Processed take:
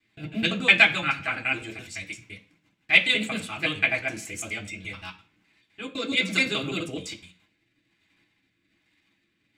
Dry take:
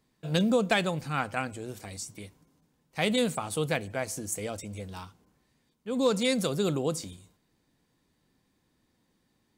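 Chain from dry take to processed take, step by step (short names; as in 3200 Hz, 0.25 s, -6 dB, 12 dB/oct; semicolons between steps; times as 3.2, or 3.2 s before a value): slices in reverse order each 85 ms, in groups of 2; EQ curve 950 Hz 0 dB, 2600 Hz +13 dB, 6500 Hz -6 dB; in parallel at +1 dB: level quantiser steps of 10 dB; on the sum: rotary speaker horn 7 Hz, later 1.2 Hz, at 4.5; reverb RT60 0.35 s, pre-delay 3 ms, DRR -2 dB; gain -5 dB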